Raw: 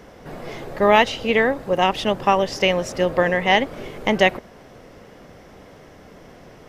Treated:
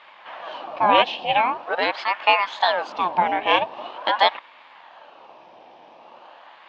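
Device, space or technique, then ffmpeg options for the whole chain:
voice changer toy: -af "aeval=exprs='val(0)*sin(2*PI*940*n/s+940*0.75/0.44*sin(2*PI*0.44*n/s))':channel_layout=same,highpass=410,equalizer=frequency=420:width_type=q:width=4:gain=-7,equalizer=frequency=610:width_type=q:width=4:gain=4,equalizer=frequency=870:width_type=q:width=4:gain=5,equalizer=frequency=1400:width_type=q:width=4:gain=-8,equalizer=frequency=2000:width_type=q:width=4:gain=-7,equalizer=frequency=2900:width_type=q:width=4:gain=4,lowpass=frequency=4000:width=0.5412,lowpass=frequency=4000:width=1.3066,volume=2dB"

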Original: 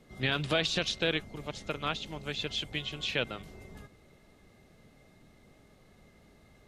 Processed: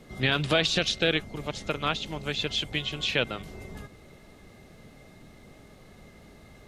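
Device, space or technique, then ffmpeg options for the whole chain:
parallel compression: -filter_complex "[0:a]asettb=1/sr,asplit=3[link_01][link_02][link_03];[link_01]atrim=end=0.754[link_04];[link_02]atrim=start=0.75:end=1.16,asetpts=PTS-STARTPTS,afade=type=in:duration=0.004:curve=qsin,afade=type=out:start_time=0.406:duration=0.004:curve=qsin,bandreject=frequency=1000:width=5[link_05];[link_03]atrim=start=1.156[link_06];[link_04][link_05]acrossfade=duration=0.004:curve1=hsin:curve2=qsin[link_07];[link_07][link_06]acrossfade=duration=0.004:curve1=qsin:curve2=hsin,asplit=2[link_08][link_09];[link_09]acompressor=threshold=-48dB:ratio=6,volume=-5dB[link_10];[link_08][link_10]amix=inputs=2:normalize=0,volume=4.5dB"

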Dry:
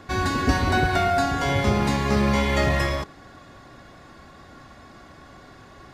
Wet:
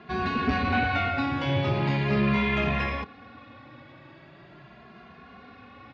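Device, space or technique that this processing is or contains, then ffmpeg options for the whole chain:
barber-pole flanger into a guitar amplifier: -filter_complex "[0:a]asplit=2[link_01][link_02];[link_02]adelay=2.5,afreqshift=0.41[link_03];[link_01][link_03]amix=inputs=2:normalize=1,asoftclip=type=tanh:threshold=-18dB,highpass=87,equalizer=frequency=140:width_type=q:width=4:gain=4,equalizer=frequency=230:width_type=q:width=4:gain=4,equalizer=frequency=2500:width_type=q:width=4:gain=8,lowpass=frequency=3900:width=0.5412,lowpass=frequency=3900:width=1.3066"

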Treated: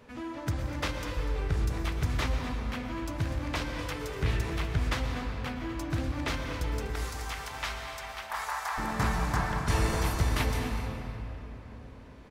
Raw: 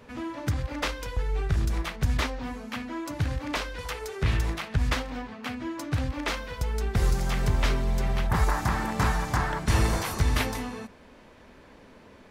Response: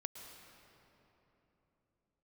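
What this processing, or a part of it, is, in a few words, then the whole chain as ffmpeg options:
cave: -filter_complex "[0:a]asettb=1/sr,asplit=3[link_01][link_02][link_03];[link_01]atrim=end=6.904[link_04];[link_02]atrim=start=6.9:end=8.78,asetpts=PTS-STARTPTS,afade=type=in:duration=0.004:curve=qsin,afade=type=out:start_time=1.876:duration=0.004:curve=qsin,highpass=frequency=740:width=0.5412,highpass=frequency=740:width=1.3066[link_05];[link_03]atrim=start=8.776[link_06];[link_04][link_05]acrossfade=duration=0.004:curve1=hsin:curve2=qsin[link_07];[link_07][link_06]acrossfade=duration=0.004:curve1=qsin:curve2=hsin,aecho=1:1:246:0.188[link_08];[1:a]atrim=start_sample=2205[link_09];[link_08][link_09]afir=irnorm=-1:irlink=0"

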